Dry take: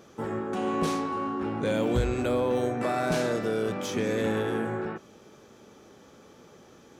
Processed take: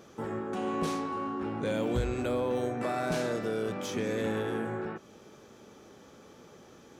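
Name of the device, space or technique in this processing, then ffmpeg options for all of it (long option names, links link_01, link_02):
parallel compression: -filter_complex "[0:a]asplit=2[link_01][link_02];[link_02]acompressor=threshold=-40dB:ratio=6,volume=-3.5dB[link_03];[link_01][link_03]amix=inputs=2:normalize=0,volume=-5dB"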